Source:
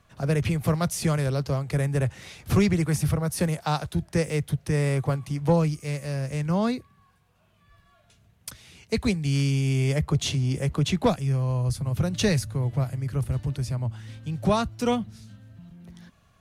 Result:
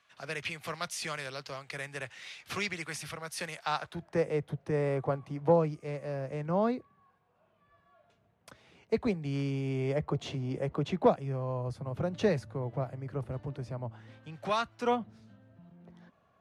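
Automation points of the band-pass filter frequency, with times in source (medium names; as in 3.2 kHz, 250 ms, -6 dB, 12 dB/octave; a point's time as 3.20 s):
band-pass filter, Q 0.81
3.54 s 2.7 kHz
4.27 s 610 Hz
14.06 s 610 Hz
14.54 s 2.1 kHz
15.11 s 600 Hz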